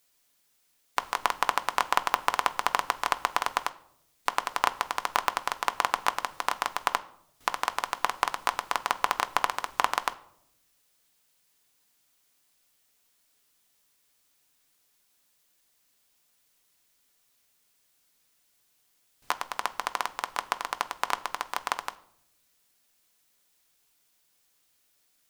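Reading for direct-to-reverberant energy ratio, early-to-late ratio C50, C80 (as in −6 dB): 9.5 dB, 19.0 dB, 21.5 dB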